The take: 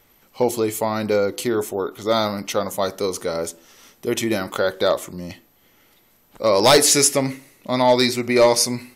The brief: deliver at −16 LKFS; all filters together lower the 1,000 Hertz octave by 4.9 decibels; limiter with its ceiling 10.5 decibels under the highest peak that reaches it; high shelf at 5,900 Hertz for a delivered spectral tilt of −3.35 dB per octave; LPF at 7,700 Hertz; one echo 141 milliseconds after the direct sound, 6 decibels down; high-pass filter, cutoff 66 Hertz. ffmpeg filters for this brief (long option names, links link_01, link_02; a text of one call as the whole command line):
ffmpeg -i in.wav -af "highpass=66,lowpass=7700,equalizer=frequency=1000:width_type=o:gain=-6.5,highshelf=frequency=5900:gain=4.5,alimiter=limit=-14dB:level=0:latency=1,aecho=1:1:141:0.501,volume=8.5dB" out.wav